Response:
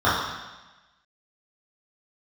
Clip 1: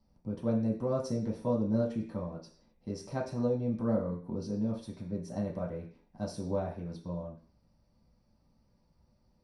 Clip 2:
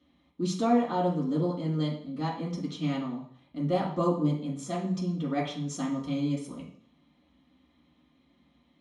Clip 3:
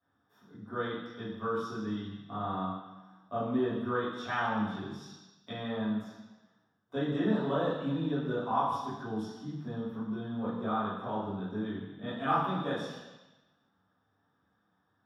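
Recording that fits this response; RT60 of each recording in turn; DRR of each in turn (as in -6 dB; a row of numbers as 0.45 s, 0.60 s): 3; 0.45 s, 0.60 s, 1.1 s; -3.5 dB, -6.5 dB, -11.5 dB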